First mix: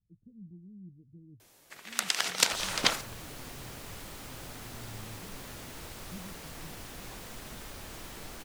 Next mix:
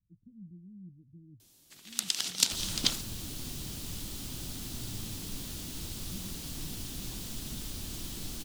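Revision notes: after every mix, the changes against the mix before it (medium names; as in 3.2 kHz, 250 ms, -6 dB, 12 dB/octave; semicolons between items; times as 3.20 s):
second sound +6.5 dB; master: add high-order bell 1 kHz -13 dB 2.8 oct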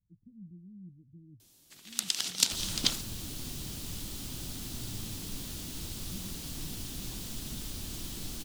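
no change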